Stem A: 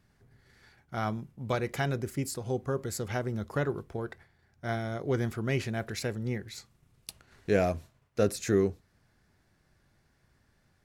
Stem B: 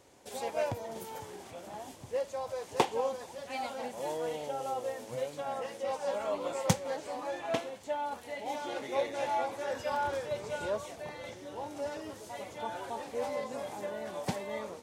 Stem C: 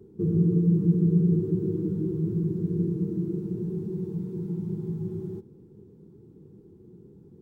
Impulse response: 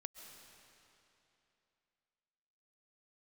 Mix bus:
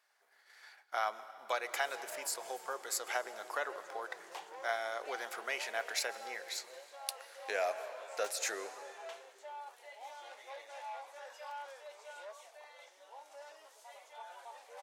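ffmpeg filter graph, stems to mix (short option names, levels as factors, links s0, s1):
-filter_complex "[0:a]volume=1.19,asplit=2[s0][s1];[s1]volume=0.596[s2];[1:a]asoftclip=type=tanh:threshold=0.0355,adelay=1550,volume=0.355[s3];[2:a]adelay=1400,volume=0.282[s4];[s0][s4]amix=inputs=2:normalize=0,agate=range=0.447:threshold=0.001:ratio=16:detection=peak,acompressor=threshold=0.0316:ratio=6,volume=1[s5];[3:a]atrim=start_sample=2205[s6];[s2][s6]afir=irnorm=-1:irlink=0[s7];[s3][s5][s7]amix=inputs=3:normalize=0,highpass=f=640:w=0.5412,highpass=f=640:w=1.3066"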